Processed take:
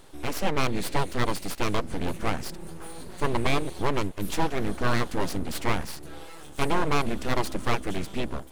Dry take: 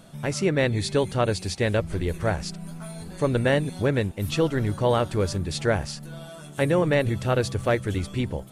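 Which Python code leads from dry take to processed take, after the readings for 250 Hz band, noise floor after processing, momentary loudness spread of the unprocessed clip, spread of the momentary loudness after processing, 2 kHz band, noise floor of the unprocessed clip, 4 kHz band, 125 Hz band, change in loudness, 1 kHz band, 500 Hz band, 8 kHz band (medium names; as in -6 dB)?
-3.5 dB, -42 dBFS, 13 LU, 12 LU, -2.0 dB, -42 dBFS, -1.5 dB, -7.5 dB, -4.5 dB, +2.0 dB, -7.0 dB, -1.5 dB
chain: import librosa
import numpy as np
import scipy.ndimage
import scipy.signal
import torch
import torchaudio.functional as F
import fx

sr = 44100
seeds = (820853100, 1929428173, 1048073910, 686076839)

y = np.abs(x)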